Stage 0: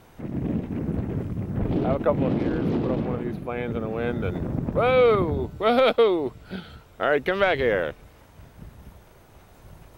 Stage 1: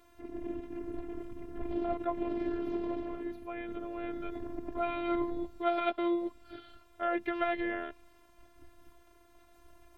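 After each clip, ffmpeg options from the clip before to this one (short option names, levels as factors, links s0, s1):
-filter_complex "[0:a]acrossover=split=3300[s0][s1];[s1]acompressor=threshold=0.00178:ratio=4:attack=1:release=60[s2];[s0][s2]amix=inputs=2:normalize=0,afftfilt=real='hypot(re,im)*cos(PI*b)':imag='0':win_size=512:overlap=0.75,volume=0.501"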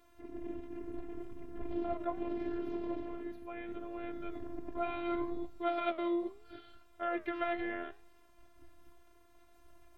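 -af "flanger=delay=6.8:depth=7.9:regen=83:speed=0.73:shape=triangular,volume=1.12"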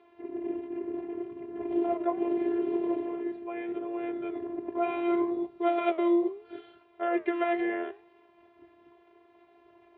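-af "highpass=180,equalizer=f=250:t=q:w=4:g=-5,equalizer=f=400:t=q:w=4:g=10,equalizer=f=870:t=q:w=4:g=4,equalizer=f=1400:t=q:w=4:g=-6,lowpass=f=3100:w=0.5412,lowpass=f=3100:w=1.3066,volume=2"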